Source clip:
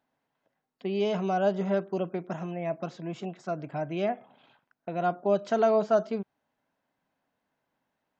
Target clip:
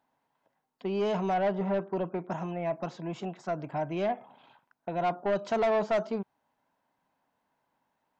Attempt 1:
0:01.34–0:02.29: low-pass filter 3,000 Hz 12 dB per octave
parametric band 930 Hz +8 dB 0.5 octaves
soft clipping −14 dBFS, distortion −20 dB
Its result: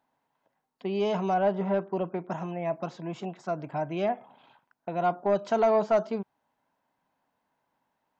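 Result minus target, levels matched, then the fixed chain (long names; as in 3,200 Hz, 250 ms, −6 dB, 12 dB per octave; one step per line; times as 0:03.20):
soft clipping: distortion −9 dB
0:01.34–0:02.29: low-pass filter 3,000 Hz 12 dB per octave
parametric band 930 Hz +8 dB 0.5 octaves
soft clipping −22 dBFS, distortion −11 dB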